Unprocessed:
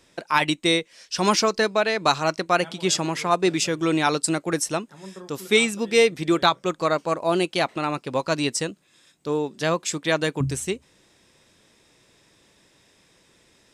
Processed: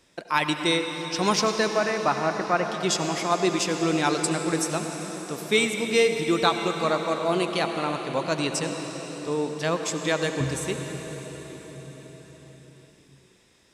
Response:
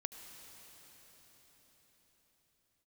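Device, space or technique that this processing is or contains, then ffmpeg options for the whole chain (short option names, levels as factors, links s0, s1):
cathedral: -filter_complex "[0:a]asettb=1/sr,asplit=3[s0][s1][s2];[s0]atrim=end=1.694[s3];[s1]atrim=start=1.69:end=2.66,asetpts=PTS-STARTPTS,afade=t=in:d=0.004:c=qsin,afade=t=out:st=0.966:d=0.004:c=qsin,lowpass=f=2300:w=0.5412,lowpass=f=2300:w=1.3066[s4];[s2]atrim=start=2.656[s5];[s3][s4]acrossfade=d=0.004:c1=hsin:c2=qsin[s6];[s6][s5]acrossfade=d=0.004:c1=qsin:c2=hsin[s7];[1:a]atrim=start_sample=2205[s8];[s7][s8]afir=irnorm=-1:irlink=0"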